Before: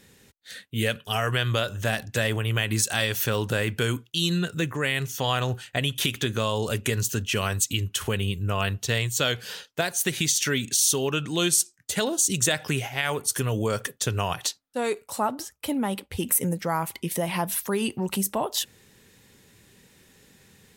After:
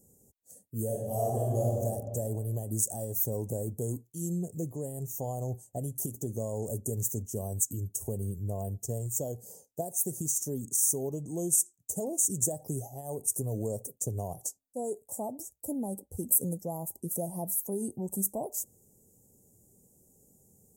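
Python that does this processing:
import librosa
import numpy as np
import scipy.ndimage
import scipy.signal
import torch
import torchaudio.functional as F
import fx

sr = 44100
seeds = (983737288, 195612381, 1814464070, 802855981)

y = fx.reverb_throw(x, sr, start_s=0.85, length_s=0.91, rt60_s=1.9, drr_db=-5.0)
y = scipy.signal.sosfilt(scipy.signal.ellip(3, 1.0, 40, [710.0, 7000.0], 'bandstop', fs=sr, output='sos'), y)
y = fx.high_shelf(y, sr, hz=8100.0, db=8.0)
y = y * 10.0 ** (-6.5 / 20.0)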